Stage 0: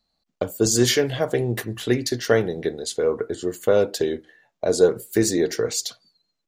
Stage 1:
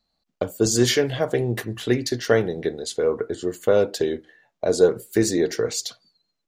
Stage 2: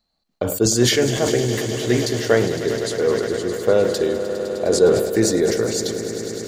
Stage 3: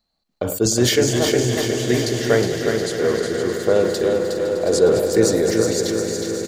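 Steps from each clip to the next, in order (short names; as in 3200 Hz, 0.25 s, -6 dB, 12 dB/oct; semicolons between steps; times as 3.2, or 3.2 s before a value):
high shelf 8400 Hz -5.5 dB
swelling echo 0.102 s, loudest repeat 5, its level -14 dB; sustainer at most 56 dB/s; gain +1 dB
feedback echo 0.363 s, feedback 54%, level -5.5 dB; gain -1 dB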